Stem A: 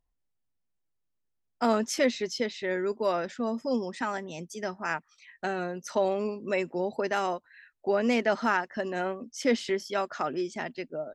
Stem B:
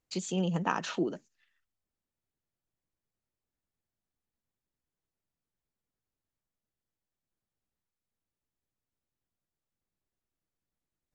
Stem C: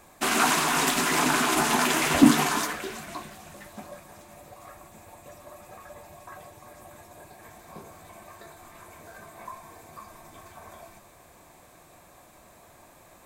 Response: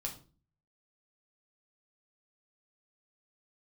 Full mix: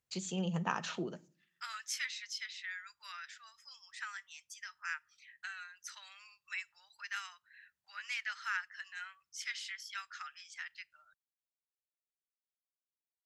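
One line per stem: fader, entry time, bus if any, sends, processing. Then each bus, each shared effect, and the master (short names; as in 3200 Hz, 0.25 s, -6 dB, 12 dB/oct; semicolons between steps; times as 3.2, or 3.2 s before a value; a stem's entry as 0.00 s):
-6.0 dB, 0.00 s, send -19 dB, steep high-pass 1400 Hz 36 dB/oct
-4.0 dB, 0.00 s, send -12 dB, bell 480 Hz -4.5 dB 2 oct
off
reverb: on, RT60 0.40 s, pre-delay 6 ms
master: HPF 53 Hz; bell 290 Hz -9 dB 0.27 oct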